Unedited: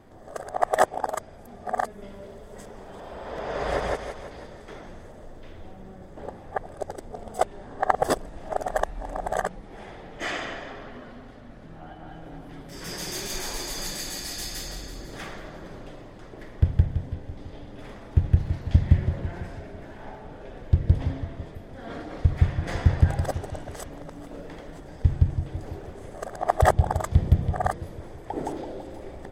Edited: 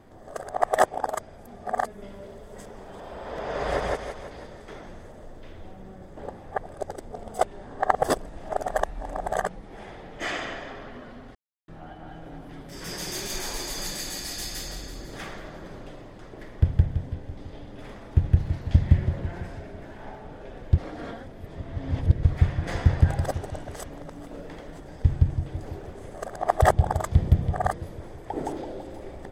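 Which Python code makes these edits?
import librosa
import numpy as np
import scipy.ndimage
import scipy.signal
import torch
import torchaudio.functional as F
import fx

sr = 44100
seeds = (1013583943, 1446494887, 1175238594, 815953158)

y = fx.edit(x, sr, fx.silence(start_s=11.35, length_s=0.33),
    fx.reverse_span(start_s=20.78, length_s=1.45), tone=tone)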